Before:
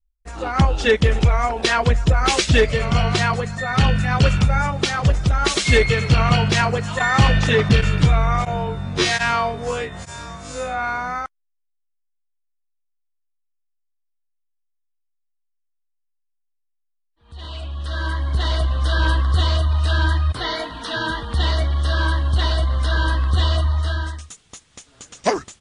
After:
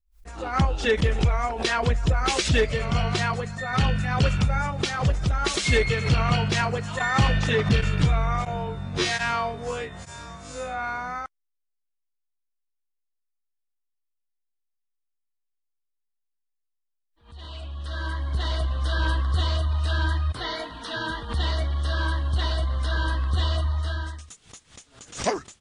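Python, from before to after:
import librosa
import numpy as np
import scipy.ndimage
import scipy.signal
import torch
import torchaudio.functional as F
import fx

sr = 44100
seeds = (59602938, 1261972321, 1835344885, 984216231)

y = fx.pre_swell(x, sr, db_per_s=150.0)
y = F.gain(torch.from_numpy(y), -6.0).numpy()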